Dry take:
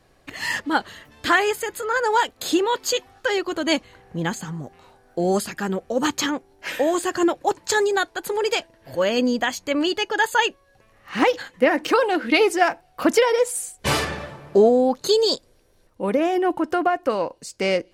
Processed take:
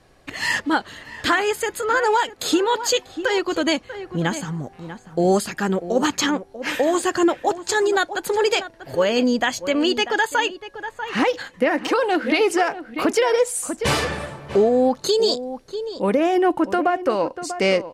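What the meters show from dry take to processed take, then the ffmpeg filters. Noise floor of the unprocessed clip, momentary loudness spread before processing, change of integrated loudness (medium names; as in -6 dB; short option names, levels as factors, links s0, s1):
-59 dBFS, 11 LU, +1.0 dB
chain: -filter_complex "[0:a]lowpass=12000,asplit=2[s0][s1];[s1]adelay=641.4,volume=0.224,highshelf=f=4000:g=-14.4[s2];[s0][s2]amix=inputs=2:normalize=0,alimiter=limit=0.237:level=0:latency=1:release=280,volume=1.5"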